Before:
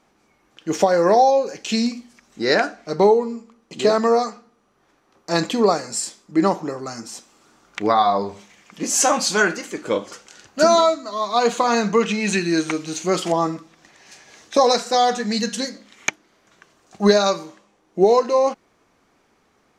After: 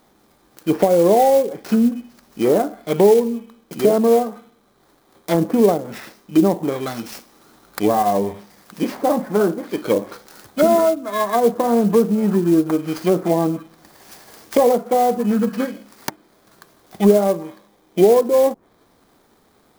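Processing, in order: bit-reversed sample order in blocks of 16 samples; low-pass that closes with the level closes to 620 Hz, closed at -16.5 dBFS; in parallel at 0 dB: peak limiter -13.5 dBFS, peak gain reduction 9 dB; on the sum: sampling jitter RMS 0.027 ms

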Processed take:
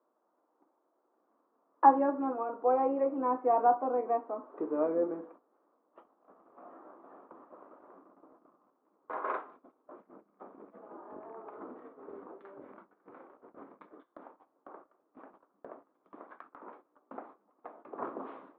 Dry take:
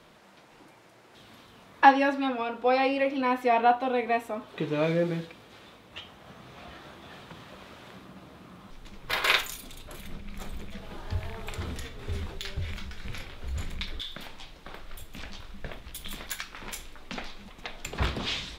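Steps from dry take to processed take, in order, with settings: octave divider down 2 oct, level -1 dB; elliptic band-pass 280–1200 Hz, stop band 70 dB; gate -51 dBFS, range -15 dB; trim -2.5 dB

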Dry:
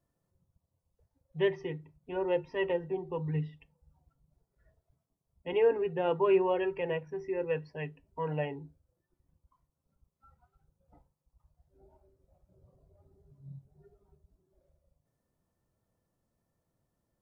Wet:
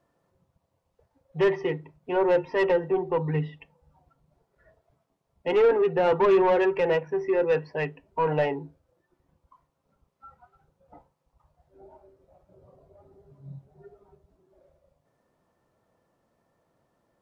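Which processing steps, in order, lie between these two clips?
overdrive pedal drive 20 dB, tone 1.3 kHz, clips at -15.5 dBFS; trim +3.5 dB

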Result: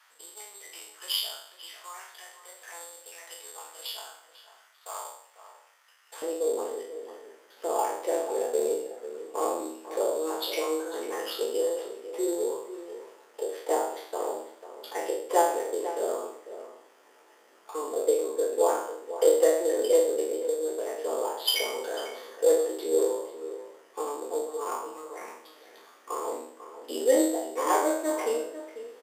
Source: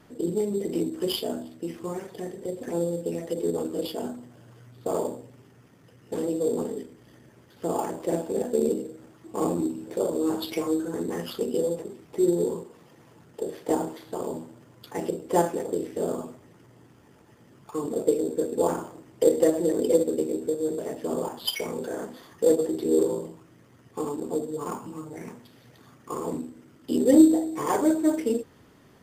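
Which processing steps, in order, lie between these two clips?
spectral sustain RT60 0.65 s; high-pass 1 kHz 24 dB/octave, from 6.22 s 450 Hz; echo from a far wall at 85 m, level -12 dB

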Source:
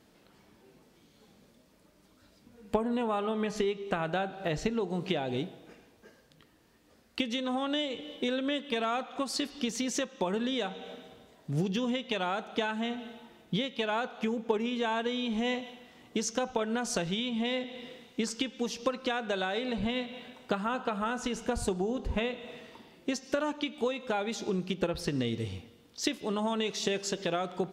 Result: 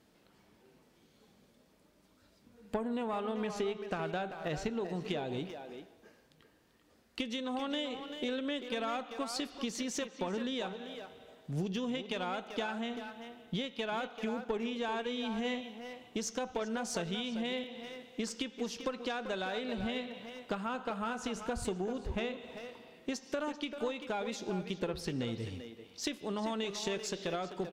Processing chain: valve stage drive 20 dB, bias 0.25; speakerphone echo 390 ms, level -7 dB; trim -4 dB

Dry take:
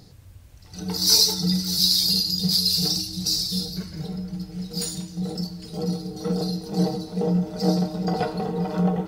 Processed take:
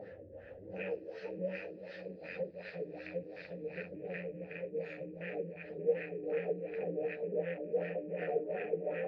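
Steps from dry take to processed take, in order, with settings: rattle on loud lows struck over -35 dBFS, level -18 dBFS; Doppler pass-by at 1.97 s, 12 m/s, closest 8.6 m; in parallel at -1 dB: peak limiter -17 dBFS, peak gain reduction 10.5 dB; on the sum: compression 2.5:1, threshold -44 dBFS, peak gain reduction 19.5 dB; waveshaping leveller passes 5; flange 1.5 Hz, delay 9.5 ms, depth 4.2 ms, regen -8%; vowel filter e; on a send: echo that smears into a reverb 459 ms, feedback 50%, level -12.5 dB; on the sum: LFO low-pass sine 2.7 Hz 320–1600 Hz; trim +6.5 dB; Vorbis 48 kbps 32 kHz

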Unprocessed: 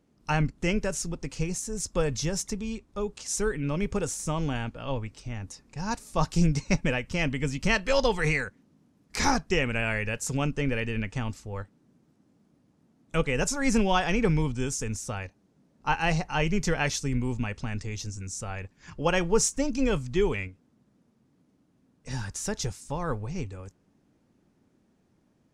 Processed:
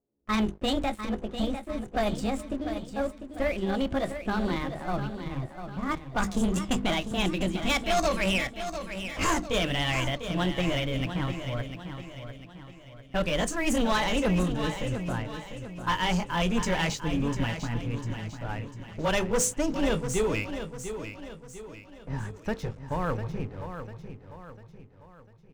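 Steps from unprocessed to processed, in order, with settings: pitch bend over the whole clip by +6 st ending unshifted; level-controlled noise filter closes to 630 Hz, open at -21 dBFS; hum notches 50/100/150/200/250/300/350/400/450/500 Hz; waveshaping leveller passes 3; feedback delay 698 ms, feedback 44%, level -9.5 dB; trim -8 dB

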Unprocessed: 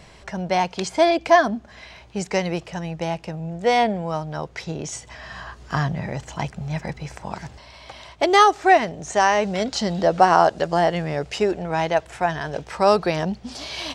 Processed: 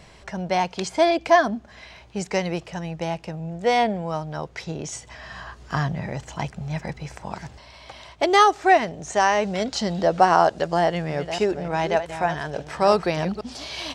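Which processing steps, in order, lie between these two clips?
10.79–13.41 s: chunks repeated in reverse 298 ms, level -10 dB; trim -1.5 dB

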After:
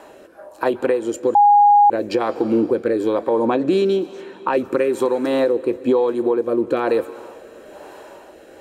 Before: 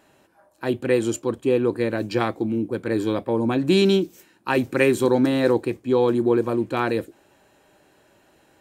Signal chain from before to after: 3.45–4.65 s: level-controlled noise filter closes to 1.2 kHz, open at -15.5 dBFS; ten-band graphic EQ 125 Hz -11 dB, 500 Hz +9 dB, 1 kHz +8 dB; compression 10:1, threshold -26 dBFS, peak gain reduction 20 dB; reverberation RT60 3.0 s, pre-delay 117 ms, DRR 17 dB; rotary cabinet horn 1.1 Hz; 1.35–1.90 s: bleep 822 Hz -15.5 dBFS; loudness maximiser +20 dB; trim -7 dB

